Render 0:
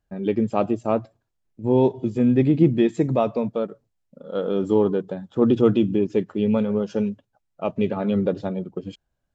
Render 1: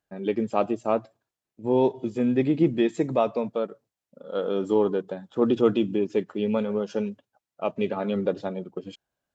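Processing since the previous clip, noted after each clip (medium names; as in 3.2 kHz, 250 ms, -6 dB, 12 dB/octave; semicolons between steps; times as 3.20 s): high-pass 370 Hz 6 dB/octave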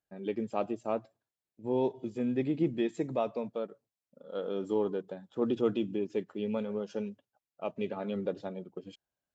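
peaking EQ 1.2 kHz -2 dB; trim -8 dB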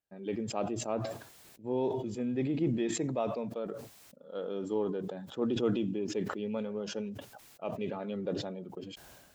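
decay stretcher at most 42 dB/s; trim -2.5 dB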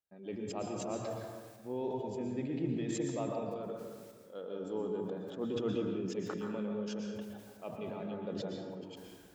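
plate-style reverb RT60 1.4 s, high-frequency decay 0.5×, pre-delay 105 ms, DRR 1.5 dB; trim -6.5 dB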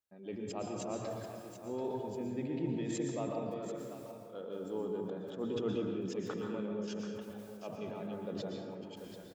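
delay 736 ms -11 dB; trim -1 dB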